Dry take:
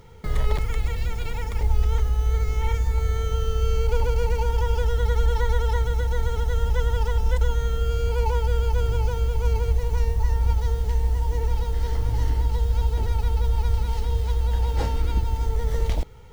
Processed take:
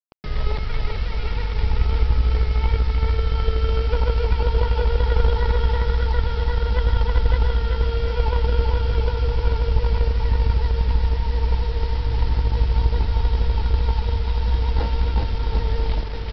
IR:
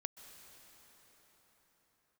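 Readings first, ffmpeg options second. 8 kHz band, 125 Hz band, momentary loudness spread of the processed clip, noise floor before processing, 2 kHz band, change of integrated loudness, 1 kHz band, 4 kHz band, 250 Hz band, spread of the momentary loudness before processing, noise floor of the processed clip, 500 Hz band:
can't be measured, +2.5 dB, 4 LU, −29 dBFS, +3.5 dB, +2.5 dB, +2.0 dB, +5.0 dB, +5.5 dB, 3 LU, −26 dBFS, +2.0 dB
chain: -af "aecho=1:1:390|741|1057|1341|1597:0.631|0.398|0.251|0.158|0.1,aeval=exprs='0.501*(cos(1*acos(clip(val(0)/0.501,-1,1)))-cos(1*PI/2))+0.1*(cos(2*acos(clip(val(0)/0.501,-1,1)))-cos(2*PI/2))+0.0891*(cos(3*acos(clip(val(0)/0.501,-1,1)))-cos(3*PI/2))+0.00794*(cos(5*acos(clip(val(0)/0.501,-1,1)))-cos(5*PI/2))+0.0178*(cos(8*acos(clip(val(0)/0.501,-1,1)))-cos(8*PI/2))':channel_layout=same,aresample=11025,acrusher=bits=6:mix=0:aa=0.000001,aresample=44100,acontrast=62,volume=-2.5dB"

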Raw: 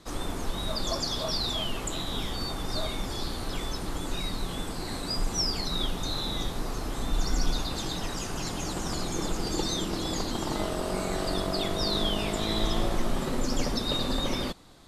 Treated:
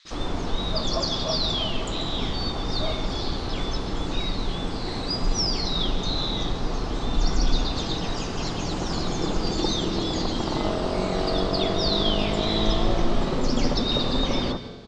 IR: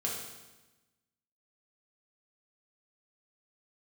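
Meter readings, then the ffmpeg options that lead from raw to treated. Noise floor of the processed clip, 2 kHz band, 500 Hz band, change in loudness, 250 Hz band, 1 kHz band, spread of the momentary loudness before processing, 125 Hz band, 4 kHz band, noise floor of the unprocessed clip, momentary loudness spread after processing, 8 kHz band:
−30 dBFS, +3.0 dB, +5.5 dB, +4.5 dB, +5.5 dB, +4.5 dB, 6 LU, +5.5 dB, +4.5 dB, −35 dBFS, 6 LU, −2.0 dB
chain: -filter_complex "[0:a]lowpass=frequency=5600:width=0.5412,lowpass=frequency=5600:width=1.3066,acrossover=split=1700[link_01][link_02];[link_01]adelay=50[link_03];[link_03][link_02]amix=inputs=2:normalize=0,asplit=2[link_04][link_05];[1:a]atrim=start_sample=2205,adelay=135[link_06];[link_05][link_06]afir=irnorm=-1:irlink=0,volume=-15.5dB[link_07];[link_04][link_07]amix=inputs=2:normalize=0,volume=5dB"

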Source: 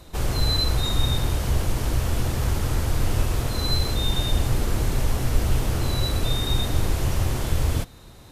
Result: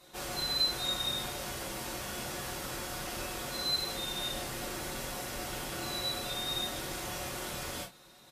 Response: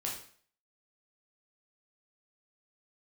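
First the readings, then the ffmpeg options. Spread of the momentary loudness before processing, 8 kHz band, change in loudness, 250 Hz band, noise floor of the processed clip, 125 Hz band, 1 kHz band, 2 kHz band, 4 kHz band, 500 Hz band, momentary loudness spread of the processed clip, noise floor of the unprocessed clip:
3 LU, −4.5 dB, −9.5 dB, −12.0 dB, −57 dBFS, −23.0 dB, −6.0 dB, −4.5 dB, −4.0 dB, −8.5 dB, 7 LU, −46 dBFS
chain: -filter_complex "[0:a]highpass=frequency=600:poles=1,aecho=1:1:5.4:0.4,acontrast=79[link_01];[1:a]atrim=start_sample=2205,afade=type=out:start_time=0.19:duration=0.01,atrim=end_sample=8820,asetrate=83790,aresample=44100[link_02];[link_01][link_02]afir=irnorm=-1:irlink=0,volume=-8dB" -ar 48000 -c:a libmp3lame -b:a 192k

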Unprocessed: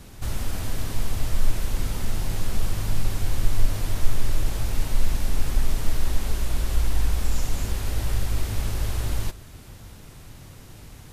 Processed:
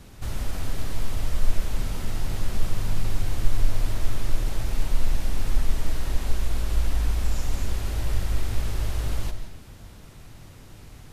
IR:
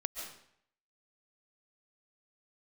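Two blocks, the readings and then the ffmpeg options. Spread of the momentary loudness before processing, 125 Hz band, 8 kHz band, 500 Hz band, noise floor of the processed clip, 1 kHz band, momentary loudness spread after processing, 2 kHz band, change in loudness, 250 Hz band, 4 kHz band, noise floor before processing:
17 LU, −1.5 dB, −4.0 dB, −1.0 dB, −46 dBFS, −1.5 dB, 18 LU, −1.5 dB, −1.5 dB, −1.5 dB, −2.5 dB, −44 dBFS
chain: -filter_complex "[0:a]asplit=2[link_01][link_02];[1:a]atrim=start_sample=2205,highshelf=frequency=8800:gain=-10.5[link_03];[link_02][link_03]afir=irnorm=-1:irlink=0,volume=2dB[link_04];[link_01][link_04]amix=inputs=2:normalize=0,volume=-8.5dB"

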